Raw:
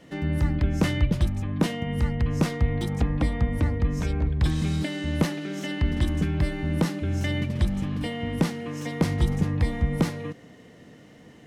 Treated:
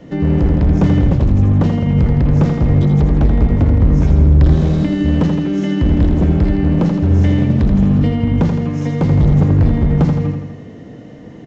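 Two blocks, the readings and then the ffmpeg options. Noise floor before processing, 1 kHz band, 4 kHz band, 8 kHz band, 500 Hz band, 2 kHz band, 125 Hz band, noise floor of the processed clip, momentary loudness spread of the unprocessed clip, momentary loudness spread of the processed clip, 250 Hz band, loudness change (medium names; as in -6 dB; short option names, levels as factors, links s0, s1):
-50 dBFS, +8.0 dB, +0.5 dB, no reading, +10.5 dB, +2.0 dB, +13.5 dB, -35 dBFS, 5 LU, 5 LU, +13.0 dB, +12.5 dB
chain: -filter_complex "[0:a]tiltshelf=f=920:g=6.5,acrossover=split=320[s0][s1];[s1]acompressor=threshold=0.0178:ratio=2[s2];[s0][s2]amix=inputs=2:normalize=0,aresample=16000,asoftclip=type=hard:threshold=0.119,aresample=44100,aecho=1:1:82|164|246|328|410|492|574|656:0.501|0.296|0.174|0.103|0.0607|0.0358|0.0211|0.0125,volume=2.66"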